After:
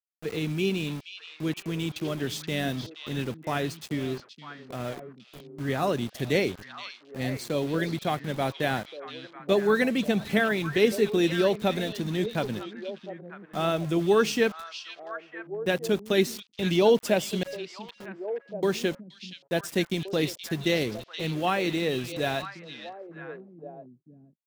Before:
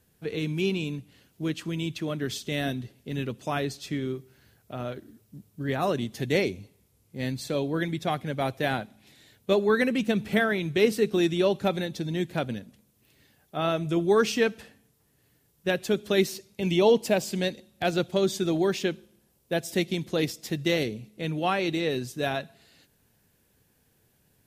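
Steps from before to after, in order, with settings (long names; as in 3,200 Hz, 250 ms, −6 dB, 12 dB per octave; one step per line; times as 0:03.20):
0:17.43–0:18.63: resonances in every octave C#, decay 0.61 s
centre clipping without the shift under −38.5 dBFS
echo through a band-pass that steps 474 ms, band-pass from 3,700 Hz, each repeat −1.4 octaves, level −5.5 dB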